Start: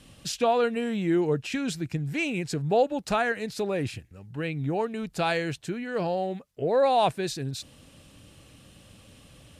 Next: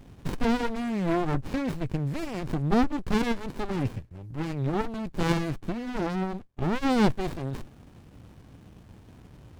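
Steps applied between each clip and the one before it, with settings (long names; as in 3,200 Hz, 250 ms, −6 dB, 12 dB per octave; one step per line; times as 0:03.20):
windowed peak hold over 65 samples
level +4.5 dB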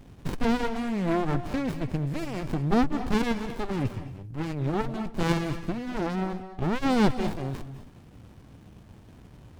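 convolution reverb RT60 0.35 s, pre-delay 195 ms, DRR 11 dB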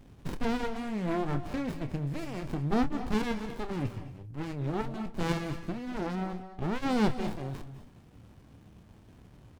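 double-tracking delay 28 ms −11 dB
level −5 dB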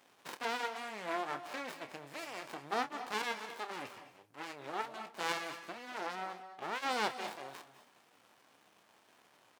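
high-pass filter 770 Hz 12 dB per octave
level +1.5 dB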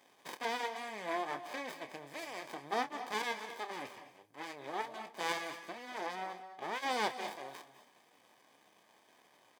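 notch comb filter 1,400 Hz
level +1 dB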